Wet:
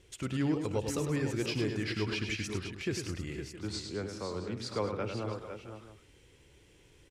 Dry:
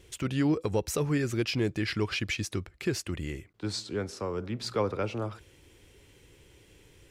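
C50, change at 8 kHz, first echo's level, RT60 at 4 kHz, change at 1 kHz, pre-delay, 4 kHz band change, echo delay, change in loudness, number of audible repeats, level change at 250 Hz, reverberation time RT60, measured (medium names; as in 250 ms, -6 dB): no reverb, -4.0 dB, -17.0 dB, no reverb, -3.5 dB, no reverb, -3.5 dB, 58 ms, -3.5 dB, 5, -3.5 dB, no reverb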